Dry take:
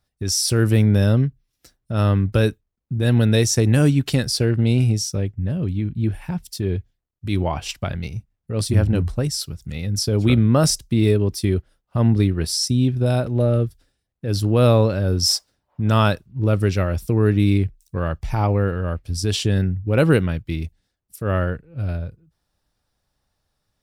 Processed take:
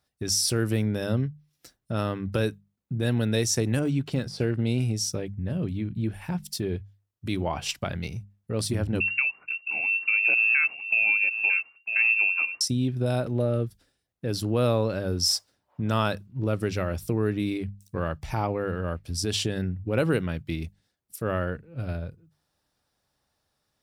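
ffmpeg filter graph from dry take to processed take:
-filter_complex "[0:a]asettb=1/sr,asplit=3[s0][s1][s2];[s0]atrim=end=3.794[s3];[s1]atrim=start=3.79:end=4.41,asetpts=PTS-STARTPTS,afade=t=in:d=0.004:c=qsin,afade=t=out:st=0.616:d=0.004:c=qsin,bandreject=f=1800:w=11,deesser=0.8,highshelf=f=9000:g=-12[s4];[s2]atrim=start=4.406[s5];[s3][s4]acrossfade=d=0.004:c1=hsin:c2=qsin[s6];[s6][s5]acrossfade=d=0.004:c1=qsin:c2=hsin,asettb=1/sr,asplit=3[s7][s8][s9];[s7]atrim=end=9.004[s10];[s8]atrim=start=9:end=12.61,asetpts=PTS-STARTPTS,afade=t=in:d=0.004:c=qsin,afade=t=out:st=3.606:d=0.004:c=qsin,aecho=1:1:951:0.237,atrim=end_sample=159201,lowpass=f=2400:t=q:w=0.5098,lowpass=f=2400:t=q:w=0.6013,lowpass=f=2400:t=q:w=0.9,lowpass=f=2400:t=q:w=2.563,afreqshift=-2800[s11];[s9]atrim=start=12.606[s12];[s10][s11]acrossfade=d=0.004:c1=hsin:c2=qsin[s13];[s13][s12]acrossfade=d=0.004:c1=qsin:c2=hsin,acompressor=threshold=0.0631:ratio=2,highpass=f=130:p=1,bandreject=f=50:t=h:w=6,bandreject=f=100:t=h:w=6,bandreject=f=150:t=h:w=6,bandreject=f=200:t=h:w=6"

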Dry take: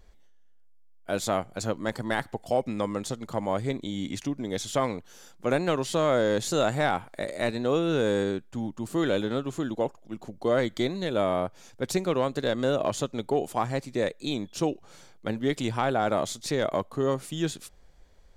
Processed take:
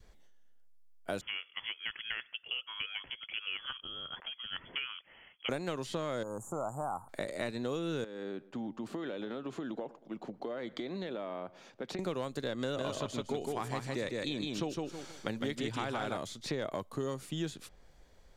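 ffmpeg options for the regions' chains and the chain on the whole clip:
-filter_complex "[0:a]asettb=1/sr,asplit=3[s0][s1][s2];[s0]atrim=end=1.214[s3];[s1]atrim=start=1.21:end=5.49,asetpts=PTS-STARTPTS,afade=t=in:d=0.004:c=qsin,afade=t=out:st=4.276:d=0.004:c=qsin,highpass=f=300:p=1,acrossover=split=770|2600[s4][s5][s6];[s4]acompressor=threshold=0.00794:ratio=4[s7];[s5]acompressor=threshold=0.0158:ratio=4[s8];[s6]acompressor=threshold=0.00562:ratio=4[s9];[s7][s8][s9]amix=inputs=3:normalize=0,lowpass=f=3000:t=q:w=0.5098,lowpass=f=3000:t=q:w=0.6013,lowpass=f=3000:t=q:w=0.9,lowpass=f=3000:t=q:w=2.563,afreqshift=-3500[s10];[s2]atrim=start=5.486[s11];[s3][s10]acrossfade=d=0.004:c1=hsin:c2=qsin[s12];[s12][s11]acrossfade=d=0.004:c1=qsin:c2=hsin,asettb=1/sr,asplit=3[s13][s14][s15];[s13]atrim=end=6.234[s16];[s14]atrim=start=6.23:end=7.09,asetpts=PTS-STARTPTS,afade=t=in:d=0.004:c=qsin,afade=t=out:st=0.856:d=0.004:c=qsin,asuperstop=centerf=3100:order=12:qfactor=0.51,lowshelf=f=620:t=q:w=1.5:g=-7.5[s17];[s15]atrim=start=7.086[s18];[s16][s17]acrossfade=d=0.004:c1=hsin:c2=qsin[s19];[s19][s18]acrossfade=d=0.004:c1=qsin:c2=hsin,asettb=1/sr,asplit=3[s20][s21][s22];[s20]atrim=end=8.044[s23];[s21]atrim=start=8.04:end=11.99,asetpts=PTS-STARTPTS,afade=t=in:d=0.004:c=qsin,afade=t=out:st=3.946:d=0.004:c=qsin,acrossover=split=160 4400:gain=0.0891 1 0.126[s24][s25][s26];[s24][s25][s26]amix=inputs=3:normalize=0,acompressor=threshold=0.0224:ratio=12:attack=3.2:release=140:knee=1:detection=peak,asplit=2[s27][s28];[s28]adelay=116,lowpass=f=1700:p=1,volume=0.0891,asplit=2[s29][s30];[s30]adelay=116,lowpass=f=1700:p=1,volume=0.45,asplit=2[s31][s32];[s32]adelay=116,lowpass=f=1700:p=1,volume=0.45[s33];[s27][s29][s31][s33]amix=inputs=4:normalize=0,atrim=end_sample=174195[s34];[s22]atrim=start=11.986[s35];[s23][s34]acrossfade=d=0.004:c1=hsin:c2=qsin[s36];[s36][s35]acrossfade=d=0.004:c1=qsin:c2=hsin,asettb=1/sr,asplit=3[s37][s38][s39];[s37]atrim=end=12.614[s40];[s38]atrim=start=12.61:end=16.17,asetpts=PTS-STARTPTS,afade=t=in:d=0.004:c=qsin,afade=t=out:st=3.556:d=0.004:c=qsin,equalizer=f=3400:w=0.39:g=4,aecho=1:1:158|316|474:0.708|0.149|0.0312,atrim=end_sample=156996[s41];[s39]atrim=start=16.166[s42];[s40][s41]acrossfade=d=0.004:c1=hsin:c2=qsin[s43];[s43][s42]acrossfade=d=0.004:c1=qsin:c2=hsin,adynamicequalizer=threshold=0.01:dfrequency=690:dqfactor=1.8:tfrequency=690:tqfactor=1.8:attack=5:release=100:ratio=0.375:range=2.5:mode=cutabove:tftype=bell,acrossover=split=90|4200[s44][s45][s46];[s44]acompressor=threshold=0.00158:ratio=4[s47];[s45]acompressor=threshold=0.02:ratio=4[s48];[s46]acompressor=threshold=0.00224:ratio=4[s49];[s47][s48][s49]amix=inputs=3:normalize=0"

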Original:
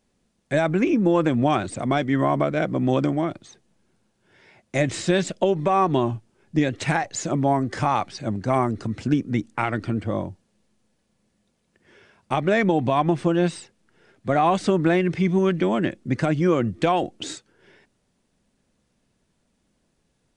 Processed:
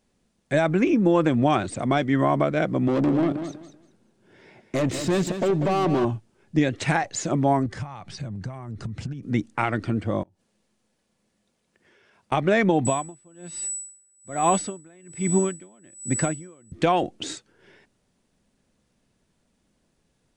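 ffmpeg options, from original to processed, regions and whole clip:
-filter_complex "[0:a]asettb=1/sr,asplit=3[s0][s1][s2];[s0]atrim=end=2.884[s3];[s1]atrim=start=2.88:end=6.05,asetpts=PTS-STARTPTS,afade=t=in:d=0.004:c=qsin,afade=t=out:st=3.166:d=0.004:c=qsin,aeval=exprs='(tanh(17.8*val(0)+0.35)-tanh(0.35))/17.8':c=same,equalizer=f=290:w=0.53:g=8.5,aecho=1:1:192|384|576:0.335|0.0737|0.0162,atrim=end_sample=139797[s4];[s2]atrim=start=6.046[s5];[s3][s4]acrossfade=d=0.004:c1=hsin:c2=qsin[s6];[s6][s5]acrossfade=d=0.004:c1=qsin:c2=hsin,asettb=1/sr,asplit=3[s7][s8][s9];[s7]atrim=end=7.664[s10];[s8]atrim=start=7.66:end=9.23,asetpts=PTS-STARTPTS,afade=t=in:d=0.004:c=qsin,afade=t=out:st=1.566:d=0.004:c=qsin,acompressor=threshold=0.02:ratio=12:attack=3.2:release=140:knee=1:detection=peak,lowshelf=f=210:t=q:w=1.5:g=7.5[s11];[s9]atrim=start=9.226[s12];[s10][s11]acrossfade=d=0.004:c1=hsin:c2=qsin[s13];[s13][s12]acrossfade=d=0.004:c1=qsin:c2=hsin,asettb=1/sr,asplit=3[s14][s15][s16];[s14]atrim=end=10.234[s17];[s15]atrim=start=10.23:end=12.32,asetpts=PTS-STARTPTS,afade=t=in:d=0.004:c=qsin,afade=t=out:st=2.086:d=0.004:c=qsin,lowshelf=f=200:g=-7.5,acompressor=threshold=0.00178:ratio=16:attack=3.2:release=140:knee=1:detection=peak[s18];[s16]atrim=start=12.316[s19];[s17][s18]acrossfade=d=0.004:c1=hsin:c2=qsin[s20];[s20][s19]acrossfade=d=0.004:c1=qsin:c2=hsin,asettb=1/sr,asplit=3[s21][s22][s23];[s21]atrim=end=12.854[s24];[s22]atrim=start=12.85:end=16.72,asetpts=PTS-STARTPTS,afade=t=in:d=0.004:c=qsin,afade=t=out:st=3.866:d=0.004:c=qsin,aeval=exprs='val(0)+0.0501*sin(2*PI*7900*n/s)':c=same,aeval=exprs='val(0)*pow(10,-33*(0.5-0.5*cos(2*PI*1.2*n/s))/20)':c=same[s25];[s23]atrim=start=16.716[s26];[s24][s25]acrossfade=d=0.004:c1=hsin:c2=qsin[s27];[s27][s26]acrossfade=d=0.004:c1=qsin:c2=hsin"

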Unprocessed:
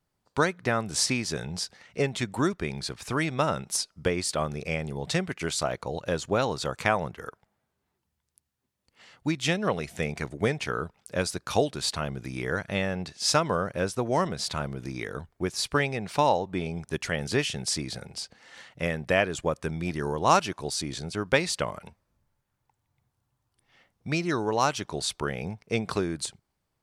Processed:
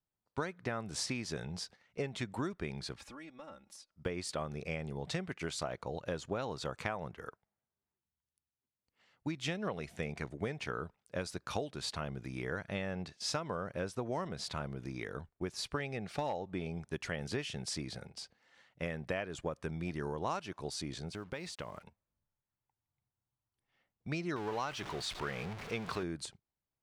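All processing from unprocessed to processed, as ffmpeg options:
-filter_complex "[0:a]asettb=1/sr,asplit=3[s0][s1][s2];[s0]atrim=end=2.974[s3];[s1]atrim=start=2.97:end=3.91,asetpts=PTS-STARTPTS,afade=t=in:d=0.004:c=qsin,afade=t=out:st=0.936:d=0.004:c=qsin,acompressor=threshold=0.00891:ratio=8:attack=3.2:release=140:knee=1:detection=peak,aecho=1:1:3.6:0.83,atrim=end_sample=41454[s4];[s2]atrim=start=3.906[s5];[s3][s4]acrossfade=d=0.004:c1=hsin:c2=qsin[s6];[s6][s5]acrossfade=d=0.004:c1=qsin:c2=hsin,asettb=1/sr,asplit=3[s7][s8][s9];[s7]atrim=end=15.804[s10];[s8]atrim=start=15.8:end=16.54,asetpts=PTS-STARTPTS,afade=t=in:d=0.004:c=qsin,afade=t=out:st=0.736:d=0.004:c=qsin,asuperstop=centerf=980:order=4:qfactor=6,asoftclip=type=hard:threshold=0.158[s11];[s9]atrim=start=16.536[s12];[s10][s11]acrossfade=d=0.004:c1=hsin:c2=qsin[s13];[s13][s12]acrossfade=d=0.004:c1=qsin:c2=hsin,asettb=1/sr,asplit=3[s14][s15][s16];[s14]atrim=end=21.114[s17];[s15]atrim=start=21.11:end=21.84,asetpts=PTS-STARTPTS,afade=t=in:d=0.004:c=qsin,afade=t=out:st=0.726:d=0.004:c=qsin,acompressor=threshold=0.0251:ratio=4:attack=3.2:release=140:knee=1:detection=peak,acrusher=bits=8:mix=0:aa=0.5[s18];[s16]atrim=start=21.836[s19];[s17][s18]acrossfade=d=0.004:c1=hsin:c2=qsin[s20];[s20][s19]acrossfade=d=0.004:c1=qsin:c2=hsin,asettb=1/sr,asplit=3[s21][s22][s23];[s21]atrim=end=24.364[s24];[s22]atrim=start=24.36:end=26.03,asetpts=PTS-STARTPTS,afade=t=in:d=0.004:c=qsin,afade=t=out:st=1.666:d=0.004:c=qsin,aeval=exprs='val(0)+0.5*0.0355*sgn(val(0))':c=same,lowpass=f=2100:p=1,tiltshelf=f=1100:g=-6[s25];[s23]atrim=start=26.026[s26];[s24][s25]acrossfade=d=0.004:c1=hsin:c2=qsin[s27];[s27][s26]acrossfade=d=0.004:c1=qsin:c2=hsin,agate=range=0.355:threshold=0.00708:ratio=16:detection=peak,highshelf=f=5900:g=-8.5,acompressor=threshold=0.0501:ratio=6,volume=0.473"

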